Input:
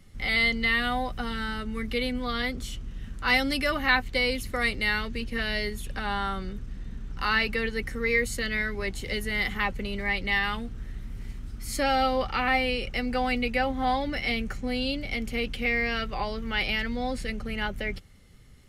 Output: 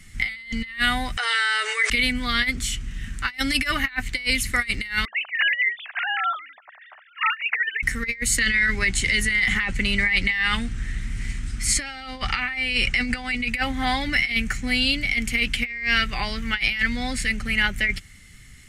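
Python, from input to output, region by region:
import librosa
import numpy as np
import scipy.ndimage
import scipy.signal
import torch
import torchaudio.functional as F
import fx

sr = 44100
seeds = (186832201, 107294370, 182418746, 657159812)

y = fx.chain(x, sr, fx.brickwall_bandpass(low_hz=410.0, high_hz=10000.0),
    fx.env_flatten(amount_pct=100), at=(1.17, 1.9))
y = fx.chain(y, sr, fx.sine_speech(),
    fx.cheby1_highpass(hz=650.0, order=4), at=(5.05, 7.83))
y = fx.chain(y, sr, fx.over_compress(threshold_db=-30.0, ratio=-0.5),
    fx.lowpass(hz=10000.0, slope=24), at=(8.37, 13.49))
y = fx.graphic_eq(y, sr, hz=(500, 1000, 2000, 8000), db=(-11, -4, 11, 11))
y = fx.over_compress(y, sr, threshold_db=-24.0, ratio=-0.5)
y = y * librosa.db_to_amplitude(2.5)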